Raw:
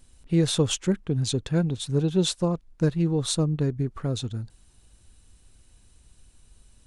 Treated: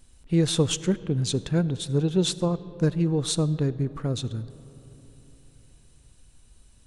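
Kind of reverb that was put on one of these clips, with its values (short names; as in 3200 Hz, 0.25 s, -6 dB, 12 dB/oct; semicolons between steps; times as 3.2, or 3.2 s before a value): digital reverb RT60 3.9 s, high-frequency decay 0.35×, pre-delay 25 ms, DRR 16.5 dB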